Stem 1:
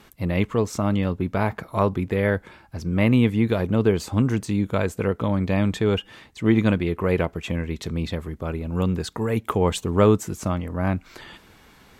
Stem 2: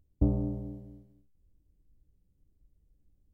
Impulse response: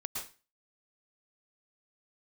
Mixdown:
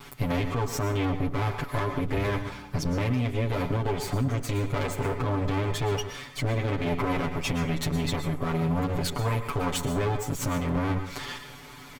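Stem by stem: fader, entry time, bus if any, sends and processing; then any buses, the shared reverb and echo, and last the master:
+2.0 dB, 0.00 s, send -5.5 dB, minimum comb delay 7.9 ms; comb 7 ms, depth 96%; compressor 6:1, threshold -27 dBFS, peak gain reduction 16 dB
-6.0 dB, 1.95 s, no send, dry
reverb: on, RT60 0.30 s, pre-delay 0.102 s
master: limiter -18 dBFS, peak gain reduction 8 dB

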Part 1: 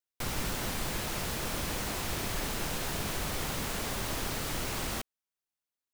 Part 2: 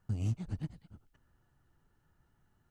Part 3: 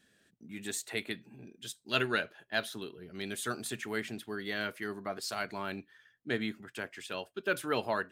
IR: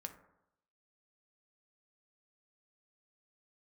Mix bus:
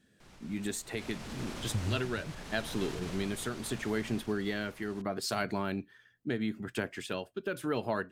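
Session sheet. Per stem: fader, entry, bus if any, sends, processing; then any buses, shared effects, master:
0.83 s -20 dB -> 1.03 s -10 dB -> 3.66 s -10 dB -> 4.33 s -19 dB, 0.00 s, no bus, no send, Bessel low-pass 6600 Hz, order 2; limiter -29 dBFS, peak gain reduction 7.5 dB
-1.0 dB, 1.65 s, bus A, no send, dry
-2.0 dB, 0.00 s, bus A, no send, low shelf 470 Hz +10.5 dB
bus A: 0.0 dB, compressor 4:1, threshold -34 dBFS, peak gain reduction 10 dB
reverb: off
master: AGC gain up to 6.5 dB; tremolo triangle 0.78 Hz, depth 50%

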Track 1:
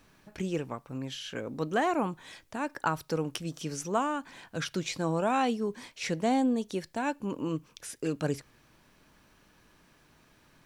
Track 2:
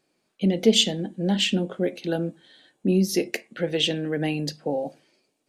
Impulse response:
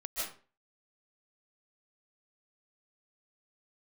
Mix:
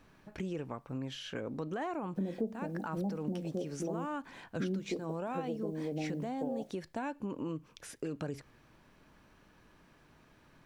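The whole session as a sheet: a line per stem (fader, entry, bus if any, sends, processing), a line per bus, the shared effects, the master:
+0.5 dB, 0.00 s, no send, high shelf 3400 Hz -9.5 dB; limiter -26 dBFS, peak gain reduction 10.5 dB
-4.5 dB, 1.75 s, no send, Chebyshev low-pass 910 Hz, order 6; requantised 10-bit, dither none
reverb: off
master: compressor 3:1, threshold -35 dBFS, peak gain reduction 14 dB

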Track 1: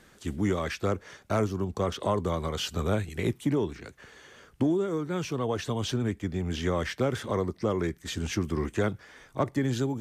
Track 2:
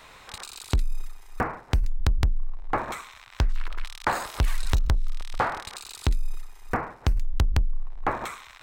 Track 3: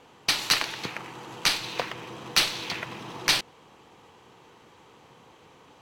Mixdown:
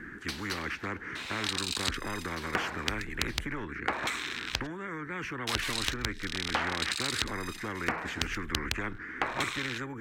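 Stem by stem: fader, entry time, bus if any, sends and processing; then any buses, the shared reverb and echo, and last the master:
-11.0 dB, 0.00 s, no bus, no send, EQ curve 160 Hz 0 dB, 310 Hz +11 dB, 640 Hz -23 dB, 1700 Hz +11 dB, 3500 Hz -20 dB; spectral compressor 4:1
+2.0 dB, 1.15 s, muted 4.67–5.47, bus A, no send, weighting filter D; gate with hold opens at -37 dBFS
-13.0 dB, 0.00 s, bus A, no send, auto duck -12 dB, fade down 1.95 s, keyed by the first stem
bus A: 0.0 dB, compressor 6:1, threshold -28 dBFS, peak gain reduction 12 dB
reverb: off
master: dry

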